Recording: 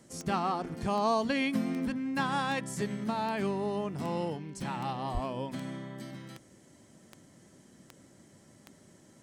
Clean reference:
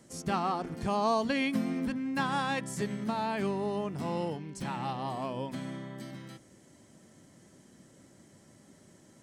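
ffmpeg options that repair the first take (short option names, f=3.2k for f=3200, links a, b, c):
-filter_complex "[0:a]adeclick=t=4,asplit=3[a][b][c];[a]afade=t=out:st=5.13:d=0.02[d];[b]highpass=f=140:w=0.5412,highpass=f=140:w=1.3066,afade=t=in:st=5.13:d=0.02,afade=t=out:st=5.25:d=0.02[e];[c]afade=t=in:st=5.25:d=0.02[f];[d][e][f]amix=inputs=3:normalize=0"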